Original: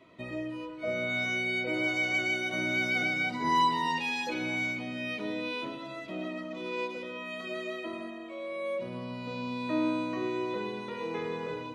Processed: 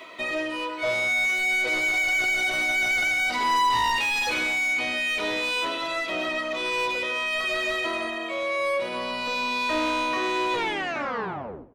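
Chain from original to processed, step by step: tape stop on the ending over 1.22 s; reverse; upward compressor, threshold -43 dBFS; reverse; RIAA curve recording; overdrive pedal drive 24 dB, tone 2.3 kHz, clips at -16 dBFS; on a send: feedback delay 94 ms, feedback 41%, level -17 dB

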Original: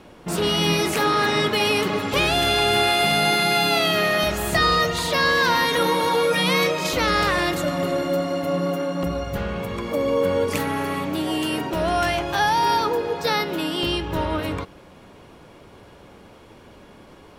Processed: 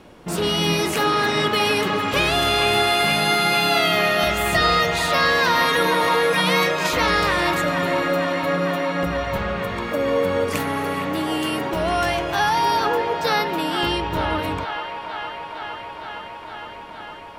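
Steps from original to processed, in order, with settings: feedback echo behind a band-pass 461 ms, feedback 82%, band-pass 1.4 kHz, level -6.5 dB

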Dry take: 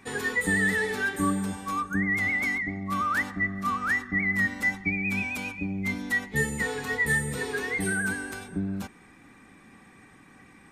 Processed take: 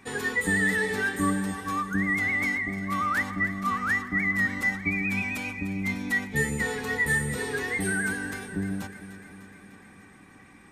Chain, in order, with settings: echo whose repeats swap between lows and highs 150 ms, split 800 Hz, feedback 80%, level -11.5 dB

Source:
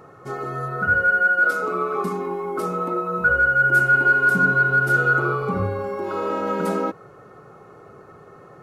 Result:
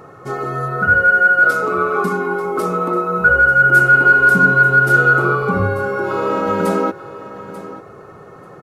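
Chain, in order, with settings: feedback delay 889 ms, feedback 16%, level -15 dB; trim +6 dB

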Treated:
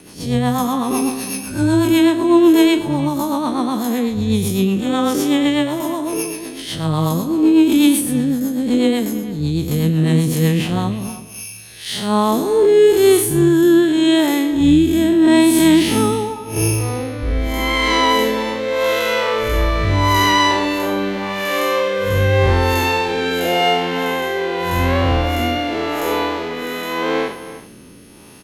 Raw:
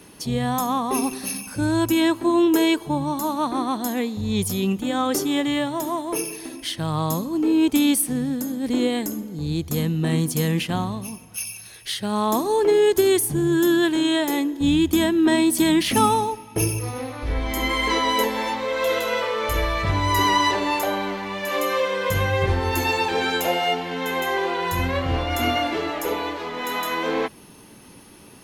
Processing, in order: spectral blur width 138 ms; rotary cabinet horn 8 Hz, later 0.85 Hz, at 10.34 s; speakerphone echo 320 ms, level -14 dB; trim +9 dB

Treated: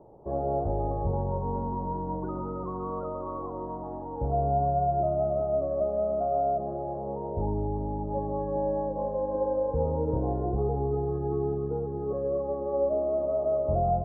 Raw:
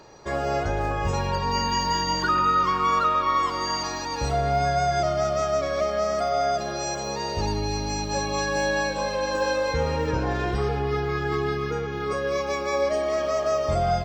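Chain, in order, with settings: steep low-pass 840 Hz 36 dB/octave; trim -2 dB

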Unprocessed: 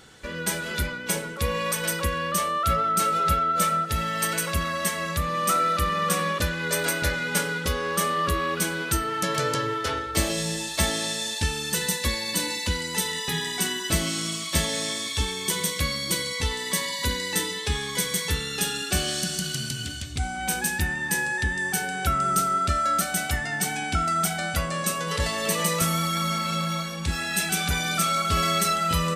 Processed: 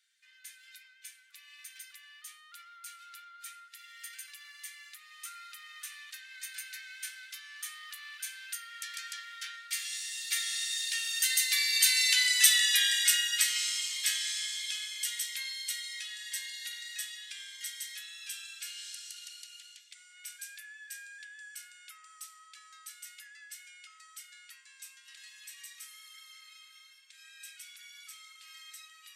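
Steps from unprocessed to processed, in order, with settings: Doppler pass-by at 12.38 s, 15 m/s, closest 8.3 m; steep high-pass 1.7 kHz 36 dB/octave; trim +6.5 dB

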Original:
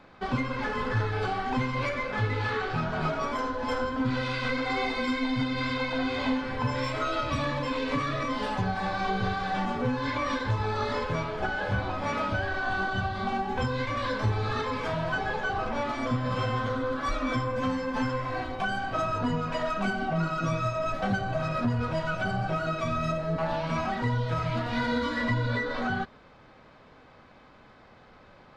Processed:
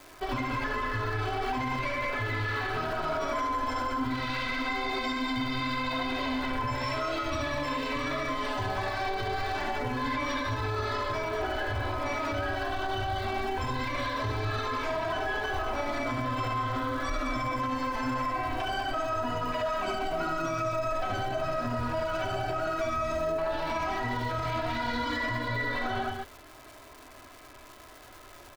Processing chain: peaking EQ 200 Hz -13 dB 0.49 oct; comb 3 ms, depth 65%; loudspeakers at several distances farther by 24 m -4 dB, 66 m -5 dB; crackle 580 per s -41 dBFS; peak limiter -22.5 dBFS, peak gain reduction 8.5 dB

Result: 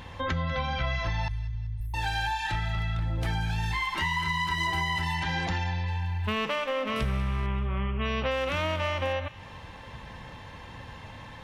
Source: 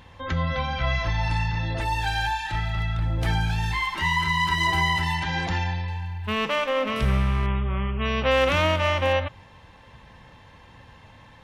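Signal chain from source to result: compression 4:1, threshold -33 dBFS, peak gain reduction 15 dB; 1.28–1.94 s: inverse Chebyshev band-stop 330–4600 Hz, stop band 60 dB; on a send: feedback echo behind a high-pass 193 ms, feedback 45%, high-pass 1.4 kHz, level -16 dB; on the sum: saturation -16 dBFS, distortion -38 dB; trim +5.5 dB

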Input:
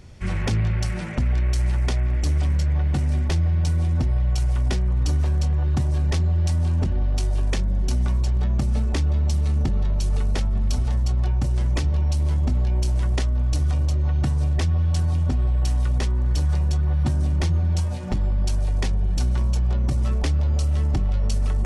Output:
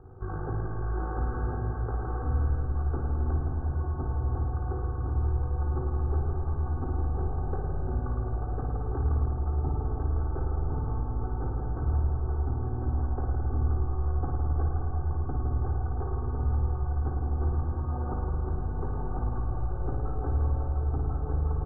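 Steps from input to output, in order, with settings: steep low-pass 1.5 kHz 96 dB/octave; bass shelf 99 Hz -8.5 dB; comb 2.5 ms, depth 91%; peak limiter -23.5 dBFS, peak gain reduction 10.5 dB; AM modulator 53 Hz, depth 40%; on a send: delay 1050 ms -3 dB; on the sum: spring tank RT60 3 s, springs 53 ms, chirp 50 ms, DRR -1.5 dB

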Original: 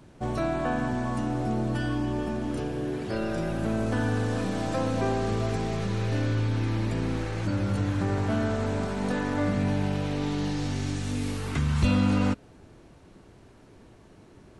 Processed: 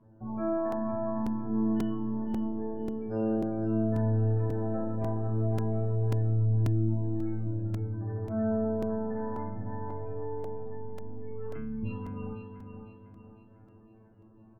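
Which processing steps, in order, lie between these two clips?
spectral gate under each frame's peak -20 dB strong; peaking EQ 250 Hz +2.5 dB; in parallel at 0 dB: compression, threshold -35 dBFS, peak gain reduction 16 dB; on the sum: distance through air 360 m; feedback comb 110 Hz, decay 0.48 s, harmonics all, mix 100%; on a send: feedback delay 502 ms, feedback 45%, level -7.5 dB; on the sum: crackling interface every 0.54 s, samples 128, repeat, from 0.72 s

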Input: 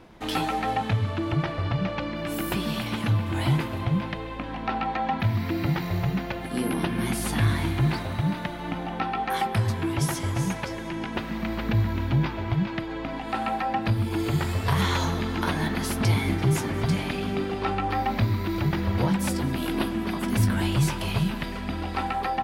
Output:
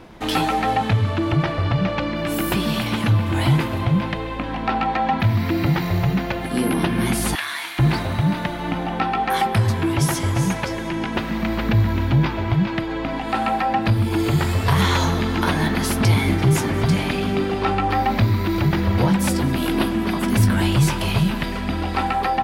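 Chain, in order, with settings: 7.35–7.79 s: high-pass 1.3 kHz 12 dB/octave; in parallel at -7 dB: saturation -24 dBFS, distortion -11 dB; on the sum: trim +4 dB

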